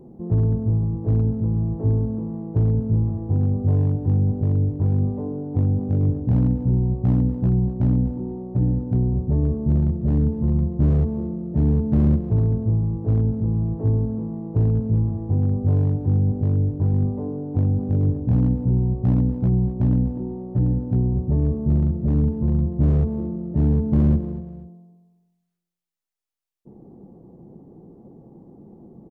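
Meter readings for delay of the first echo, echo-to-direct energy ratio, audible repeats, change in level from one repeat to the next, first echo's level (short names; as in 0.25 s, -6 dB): 0.242 s, -15.0 dB, 2, -9.5 dB, -15.5 dB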